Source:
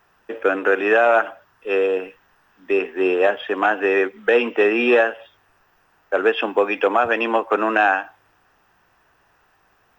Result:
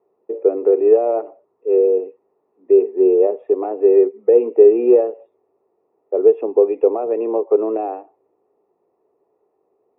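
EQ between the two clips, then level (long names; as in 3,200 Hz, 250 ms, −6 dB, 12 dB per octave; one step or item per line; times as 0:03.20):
moving average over 28 samples
high-pass with resonance 410 Hz, resonance Q 4.9
spectral tilt −3.5 dB per octave
−8.0 dB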